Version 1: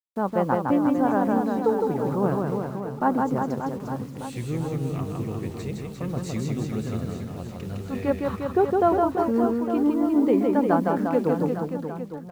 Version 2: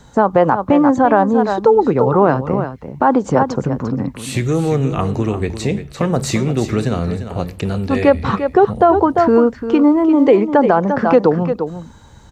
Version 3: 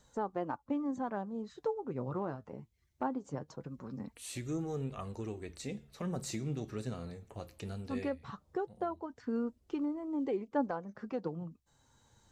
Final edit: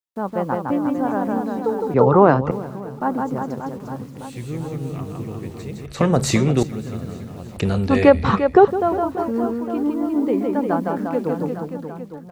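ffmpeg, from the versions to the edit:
-filter_complex "[1:a]asplit=3[s0][s1][s2];[0:a]asplit=4[s3][s4][s5][s6];[s3]atrim=end=1.942[s7];[s0]atrim=start=1.938:end=2.512[s8];[s4]atrim=start=2.508:end=5.862[s9];[s1]atrim=start=5.858:end=6.632[s10];[s5]atrim=start=6.628:end=7.572[s11];[s2]atrim=start=7.568:end=8.682[s12];[s6]atrim=start=8.678[s13];[s7][s8]acrossfade=d=0.004:c1=hsin:c2=hsin[s14];[s14][s9]acrossfade=d=0.004:c1=hsin:c2=hsin[s15];[s15][s10]acrossfade=d=0.004:c1=hsin:c2=hsin[s16];[s16][s11]acrossfade=d=0.004:c1=hsin:c2=hsin[s17];[s17][s12]acrossfade=d=0.004:c1=hsin:c2=hsin[s18];[s18][s13]acrossfade=d=0.004:c1=hsin:c2=hsin"

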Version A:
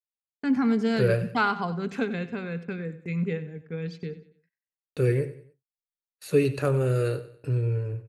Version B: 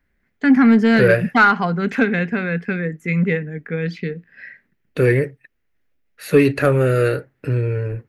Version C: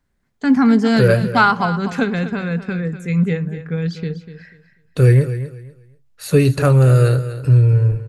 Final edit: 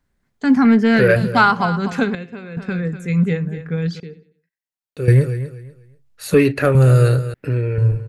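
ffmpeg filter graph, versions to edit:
-filter_complex "[1:a]asplit=3[s0][s1][s2];[0:a]asplit=2[s3][s4];[2:a]asplit=6[s5][s6][s7][s8][s9][s10];[s5]atrim=end=0.652[s11];[s0]atrim=start=0.648:end=1.162[s12];[s6]atrim=start=1.158:end=2.152[s13];[s3]atrim=start=2.148:end=2.572[s14];[s7]atrim=start=2.568:end=4.002[s15];[s4]atrim=start=3.998:end=5.082[s16];[s8]atrim=start=5.078:end=6.342[s17];[s1]atrim=start=6.338:end=6.752[s18];[s9]atrim=start=6.748:end=7.342[s19];[s2]atrim=start=7.338:end=7.782[s20];[s10]atrim=start=7.778[s21];[s11][s12]acrossfade=d=0.004:c1=hsin:c2=hsin[s22];[s22][s13]acrossfade=d=0.004:c1=hsin:c2=hsin[s23];[s23][s14]acrossfade=d=0.004:c1=hsin:c2=hsin[s24];[s24][s15]acrossfade=d=0.004:c1=hsin:c2=hsin[s25];[s25][s16]acrossfade=d=0.004:c1=hsin:c2=hsin[s26];[s26][s17]acrossfade=d=0.004:c1=hsin:c2=hsin[s27];[s27][s18]acrossfade=d=0.004:c1=hsin:c2=hsin[s28];[s28][s19]acrossfade=d=0.004:c1=hsin:c2=hsin[s29];[s29][s20]acrossfade=d=0.004:c1=hsin:c2=hsin[s30];[s30][s21]acrossfade=d=0.004:c1=hsin:c2=hsin"

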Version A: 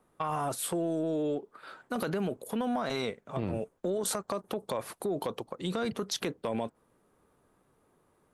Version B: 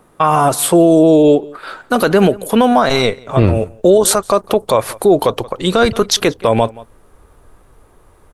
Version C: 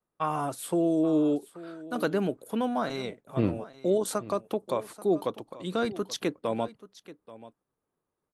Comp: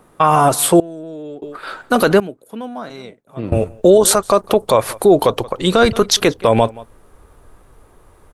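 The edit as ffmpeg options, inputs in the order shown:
-filter_complex "[1:a]asplit=3[s0][s1][s2];[s0]atrim=end=0.802[s3];[0:a]atrim=start=0.798:end=1.422[s4];[s1]atrim=start=1.418:end=2.202[s5];[2:a]atrim=start=2.198:end=3.522[s6];[s2]atrim=start=3.518[s7];[s3][s4]acrossfade=d=0.004:c1=hsin:c2=hsin[s8];[s8][s5]acrossfade=d=0.004:c1=hsin:c2=hsin[s9];[s9][s6]acrossfade=d=0.004:c1=hsin:c2=hsin[s10];[s10][s7]acrossfade=d=0.004:c1=hsin:c2=hsin"

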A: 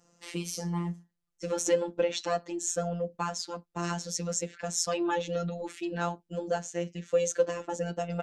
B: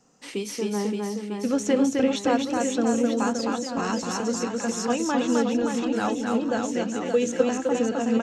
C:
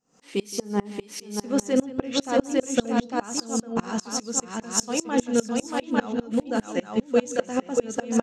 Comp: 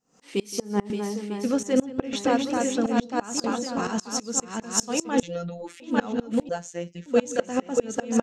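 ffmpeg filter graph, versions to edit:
-filter_complex "[1:a]asplit=3[s0][s1][s2];[0:a]asplit=2[s3][s4];[2:a]asplit=6[s5][s6][s7][s8][s9][s10];[s5]atrim=end=0.902[s11];[s0]atrim=start=0.898:end=1.632[s12];[s6]atrim=start=1.628:end=2.132[s13];[s1]atrim=start=2.128:end=2.862[s14];[s7]atrim=start=2.858:end=3.442[s15];[s2]atrim=start=3.438:end=3.872[s16];[s8]atrim=start=3.868:end=5.232[s17];[s3]atrim=start=5.228:end=5.802[s18];[s9]atrim=start=5.798:end=6.492[s19];[s4]atrim=start=6.488:end=7.062[s20];[s10]atrim=start=7.058[s21];[s11][s12]acrossfade=d=0.004:c1=hsin:c2=hsin[s22];[s22][s13]acrossfade=d=0.004:c1=hsin:c2=hsin[s23];[s23][s14]acrossfade=d=0.004:c1=hsin:c2=hsin[s24];[s24][s15]acrossfade=d=0.004:c1=hsin:c2=hsin[s25];[s25][s16]acrossfade=d=0.004:c1=hsin:c2=hsin[s26];[s26][s17]acrossfade=d=0.004:c1=hsin:c2=hsin[s27];[s27][s18]acrossfade=d=0.004:c1=hsin:c2=hsin[s28];[s28][s19]acrossfade=d=0.004:c1=hsin:c2=hsin[s29];[s29][s20]acrossfade=d=0.004:c1=hsin:c2=hsin[s30];[s30][s21]acrossfade=d=0.004:c1=hsin:c2=hsin"

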